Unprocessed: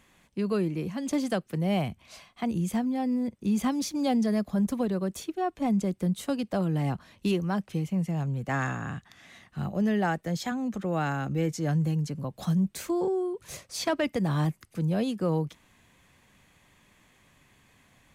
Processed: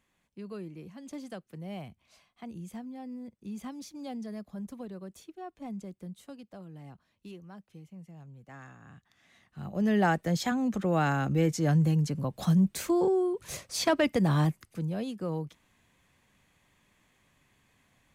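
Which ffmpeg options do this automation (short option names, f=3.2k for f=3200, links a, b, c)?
-af "volume=8dB,afade=t=out:st=5.73:d=0.92:silence=0.501187,afade=t=in:st=8.79:d=0.84:silence=0.281838,afade=t=in:st=9.63:d=0.39:silence=0.298538,afade=t=out:st=14.32:d=0.6:silence=0.375837"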